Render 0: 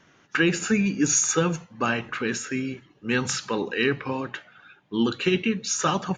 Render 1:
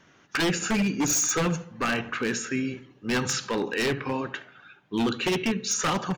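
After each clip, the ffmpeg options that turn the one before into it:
ffmpeg -i in.wav -filter_complex "[0:a]asplit=2[link_01][link_02];[link_02]adelay=73,lowpass=frequency=2100:poles=1,volume=-15dB,asplit=2[link_03][link_04];[link_04]adelay=73,lowpass=frequency=2100:poles=1,volume=0.49,asplit=2[link_05][link_06];[link_06]adelay=73,lowpass=frequency=2100:poles=1,volume=0.49,asplit=2[link_07][link_08];[link_08]adelay=73,lowpass=frequency=2100:poles=1,volume=0.49,asplit=2[link_09][link_10];[link_10]adelay=73,lowpass=frequency=2100:poles=1,volume=0.49[link_11];[link_01][link_03][link_05][link_07][link_09][link_11]amix=inputs=6:normalize=0,aeval=exprs='0.119*(abs(mod(val(0)/0.119+3,4)-2)-1)':channel_layout=same" out.wav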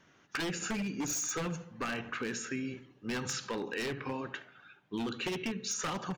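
ffmpeg -i in.wav -af "acompressor=threshold=-26dB:ratio=6,volume=-6dB" out.wav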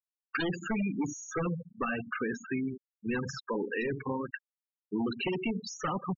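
ffmpeg -i in.wav -af "afftfilt=real='re*gte(hypot(re,im),0.0316)':imag='im*gte(hypot(re,im),0.0316)':win_size=1024:overlap=0.75,lowpass=frequency=4700:width=0.5412,lowpass=frequency=4700:width=1.3066,volume=4.5dB" out.wav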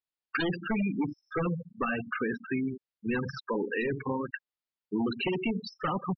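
ffmpeg -i in.wav -af "aresample=11025,aresample=44100,volume=2dB" out.wav

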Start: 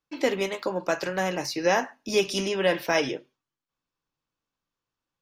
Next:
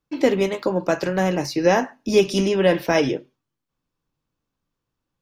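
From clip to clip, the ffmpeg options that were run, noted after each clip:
ffmpeg -i in.wav -af "lowshelf=frequency=480:gain=11,volume=1dB" out.wav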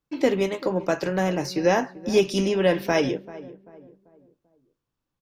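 ffmpeg -i in.wav -filter_complex "[0:a]asplit=2[link_01][link_02];[link_02]adelay=390,lowpass=frequency=1100:poles=1,volume=-16.5dB,asplit=2[link_03][link_04];[link_04]adelay=390,lowpass=frequency=1100:poles=1,volume=0.41,asplit=2[link_05][link_06];[link_06]adelay=390,lowpass=frequency=1100:poles=1,volume=0.41,asplit=2[link_07][link_08];[link_08]adelay=390,lowpass=frequency=1100:poles=1,volume=0.41[link_09];[link_01][link_03][link_05][link_07][link_09]amix=inputs=5:normalize=0,volume=-3dB" out.wav

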